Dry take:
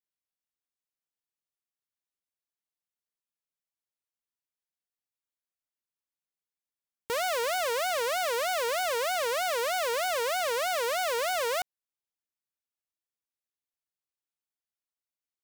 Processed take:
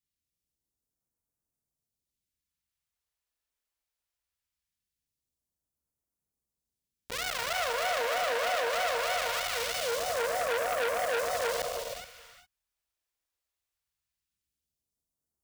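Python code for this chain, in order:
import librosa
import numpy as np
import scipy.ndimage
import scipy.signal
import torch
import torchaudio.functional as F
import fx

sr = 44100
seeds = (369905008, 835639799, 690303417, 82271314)

p1 = fx.tracing_dist(x, sr, depth_ms=0.23)
p2 = fx.low_shelf(p1, sr, hz=70.0, db=10.5)
p3 = p2 + fx.echo_single(p2, sr, ms=424, db=-16.5, dry=0)
p4 = fx.phaser_stages(p3, sr, stages=2, low_hz=150.0, high_hz=2800.0, hz=0.21, feedback_pct=25)
p5 = fx.low_shelf(p4, sr, hz=290.0, db=9.0)
p6 = fx.rev_gated(p5, sr, seeds[0], gate_ms=430, shape='flat', drr_db=2.0)
p7 = fx.rider(p6, sr, range_db=10, speed_s=0.5)
p8 = p6 + (p7 * librosa.db_to_amplitude(-2.5))
p9 = scipy.signal.sosfilt(scipy.signal.butter(2, 43.0, 'highpass', fs=sr, output='sos'), p8)
p10 = fx.transformer_sat(p9, sr, knee_hz=2500.0)
y = p10 * librosa.db_to_amplitude(-4.0)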